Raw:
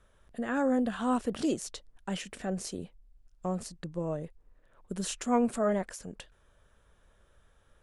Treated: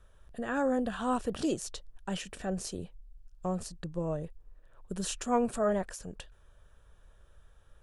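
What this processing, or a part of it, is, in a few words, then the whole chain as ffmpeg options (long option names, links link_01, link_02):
low shelf boost with a cut just above: -af "lowshelf=frequency=96:gain=8,equalizer=frequency=240:width_type=o:width=0.62:gain=-5,bandreject=frequency=2100:width=8.5"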